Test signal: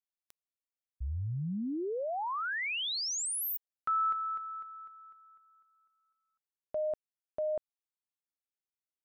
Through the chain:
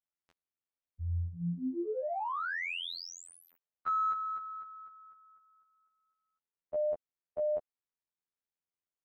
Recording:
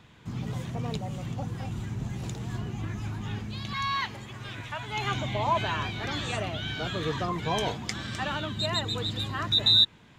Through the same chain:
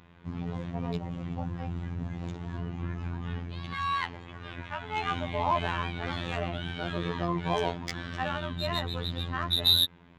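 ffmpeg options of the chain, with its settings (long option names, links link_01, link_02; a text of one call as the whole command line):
ffmpeg -i in.wav -af "adynamicsmooth=sensitivity=1.5:basefreq=2800,afftfilt=real='hypot(re,im)*cos(PI*b)':imag='0':win_size=2048:overlap=0.75,volume=3.5dB" out.wav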